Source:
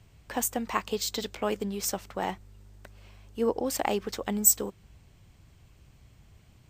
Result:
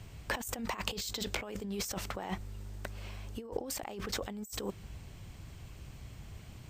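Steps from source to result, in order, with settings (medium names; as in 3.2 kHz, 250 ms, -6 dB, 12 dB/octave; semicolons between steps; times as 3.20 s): compressor with a negative ratio -39 dBFS, ratio -1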